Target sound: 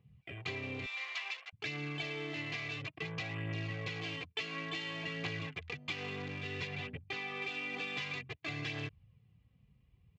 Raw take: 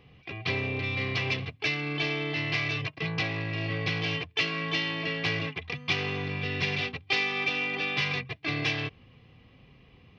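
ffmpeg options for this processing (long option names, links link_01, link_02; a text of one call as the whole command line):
ffmpeg -i in.wav -filter_complex "[0:a]afwtdn=0.00891,asettb=1/sr,asplit=3[link_01][link_02][link_03];[link_01]atrim=end=0.864[link_04];[link_02]atrim=start=0.86:end=1.53,asetpts=PTS-STARTPTS,afade=type=in:duration=0.004:curve=qsin,afade=type=out:start_time=0.666:duration=0.004:curve=qsin,highpass=frequency=810:width=0.5412,highpass=frequency=810:width=1.3066[link_05];[link_03]atrim=start=1.526[link_06];[link_04][link_05]acrossfade=duration=0.004:curve1=hsin:curve2=qsin[link_07];[link_07][link_06]acrossfade=duration=0.004:curve1=qsin:curve2=hsin,asettb=1/sr,asplit=3[link_08][link_09][link_10];[link_08]atrim=end=6.674[link_11];[link_09]atrim=start=6.67:end=7.42,asetpts=PTS-STARTPTS,afade=type=in:duration=0.004:curve=qsin,afade=type=out:start_time=0.746:duration=0.004:curve=qsin,highshelf=frequency=3400:gain=-11.5[link_12];[link_10]atrim=start=7.416[link_13];[link_11][link_12]acrossfade=duration=0.004:curve1=hsin:curve2=qsin[link_14];[link_14][link_13]acrossfade=duration=0.004:curve1=qsin:curve2=hsin,acompressor=threshold=-30dB:ratio=6,aphaser=in_gain=1:out_gain=1:delay=4.6:decay=0.33:speed=0.57:type=triangular,aresample=32000,aresample=44100,volume=-6.5dB" out.wav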